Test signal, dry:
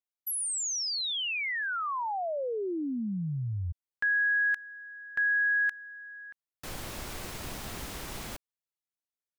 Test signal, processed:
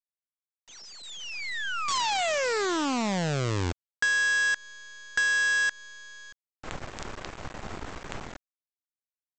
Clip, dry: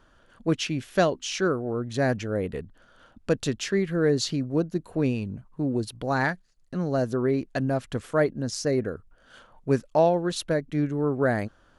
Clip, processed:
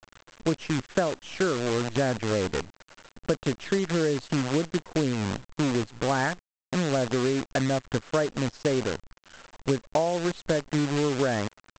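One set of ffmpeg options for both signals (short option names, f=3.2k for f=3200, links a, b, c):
-af "lowpass=1.7k,aresample=16000,acrusher=bits=6:dc=4:mix=0:aa=0.000001,aresample=44100,lowshelf=f=490:g=-3.5,acompressor=threshold=-30dB:ratio=12:attack=35:release=227:knee=6:detection=rms,volume=8dB"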